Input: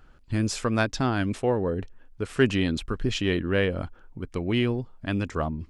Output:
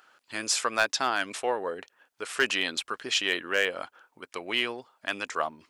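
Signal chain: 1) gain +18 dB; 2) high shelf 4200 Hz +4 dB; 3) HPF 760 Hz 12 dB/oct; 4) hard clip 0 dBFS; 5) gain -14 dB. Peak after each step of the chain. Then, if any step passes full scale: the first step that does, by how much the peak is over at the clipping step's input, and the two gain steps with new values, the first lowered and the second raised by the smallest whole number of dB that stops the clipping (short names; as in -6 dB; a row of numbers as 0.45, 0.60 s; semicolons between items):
+10.0, +10.0, +8.0, 0.0, -14.0 dBFS; step 1, 8.0 dB; step 1 +10 dB, step 5 -6 dB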